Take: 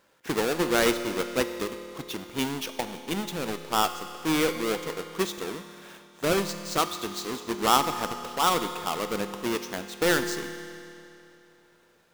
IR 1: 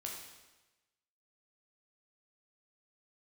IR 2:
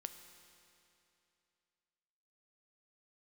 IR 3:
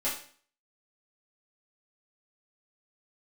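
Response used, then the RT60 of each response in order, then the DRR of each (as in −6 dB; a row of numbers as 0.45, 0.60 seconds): 2; 1.1, 2.8, 0.50 seconds; −1.5, 7.5, −11.0 decibels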